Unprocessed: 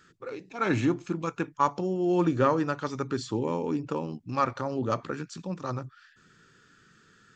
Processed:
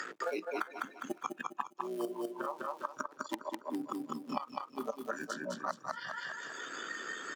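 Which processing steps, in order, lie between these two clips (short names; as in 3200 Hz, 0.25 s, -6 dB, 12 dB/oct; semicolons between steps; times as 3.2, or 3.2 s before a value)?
cycle switcher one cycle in 3, muted; flipped gate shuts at -19 dBFS, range -27 dB; reverse; compressor 10:1, threshold -46 dBFS, peak gain reduction 20 dB; reverse; added harmonics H 8 -28 dB, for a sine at -24.5 dBFS; HPF 300 Hz 24 dB/oct; echo 0.559 s -16.5 dB; spectral noise reduction 19 dB; on a send: feedback echo 0.203 s, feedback 31%, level -3 dB; on the sum: three-band squash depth 100%; gain +15.5 dB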